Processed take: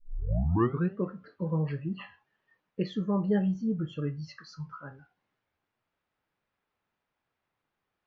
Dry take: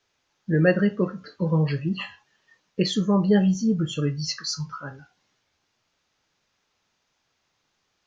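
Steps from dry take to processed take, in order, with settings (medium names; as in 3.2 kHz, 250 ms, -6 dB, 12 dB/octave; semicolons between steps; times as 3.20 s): tape start-up on the opening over 0.97 s; low-pass 2.1 kHz 12 dB/octave; trim -7.5 dB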